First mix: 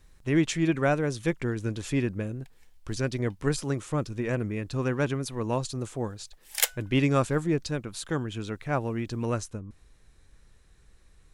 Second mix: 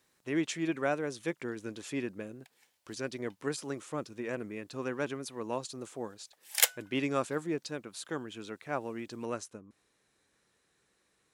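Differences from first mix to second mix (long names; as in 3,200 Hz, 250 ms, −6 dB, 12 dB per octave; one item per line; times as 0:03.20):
speech −5.5 dB
master: add high-pass filter 250 Hz 12 dB per octave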